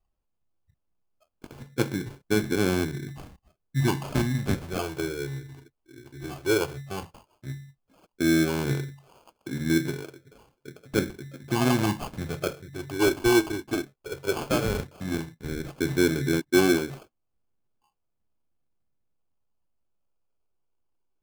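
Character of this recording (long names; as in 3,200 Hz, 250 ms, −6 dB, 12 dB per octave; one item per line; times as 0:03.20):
phaser sweep stages 8, 0.13 Hz, lowest notch 180–2,200 Hz
aliases and images of a low sample rate 1,900 Hz, jitter 0%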